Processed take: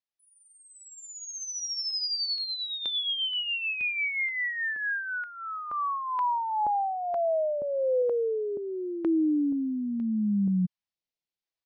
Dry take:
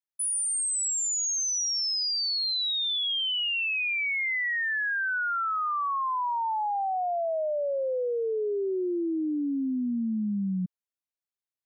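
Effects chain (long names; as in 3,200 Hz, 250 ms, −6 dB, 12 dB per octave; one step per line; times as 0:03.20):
0:05.90–0:08.02: low-shelf EQ 280 Hz +6.5 dB
speech leveller
Butterworth low-pass 5,600 Hz 36 dB per octave
parametric band 1,400 Hz −7.5 dB 0.31 octaves
comb filter 6.1 ms, depth 35%
notch on a step sequencer 2.1 Hz 200–2,700 Hz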